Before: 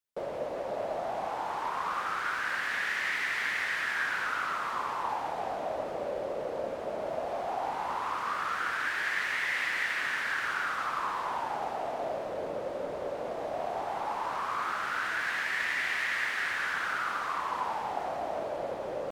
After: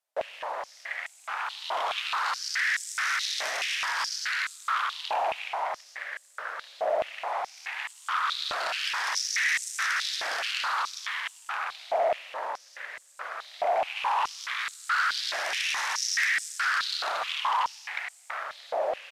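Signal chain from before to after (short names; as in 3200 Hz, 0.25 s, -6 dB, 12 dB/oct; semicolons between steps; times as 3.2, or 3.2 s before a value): 13.94–14.46 doubler 18 ms -3 dB; added harmonics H 3 -8 dB, 4 -16 dB, 7 -14 dB, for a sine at -17.5 dBFS; downsampling 32000 Hz; stepped high-pass 4.7 Hz 660–7800 Hz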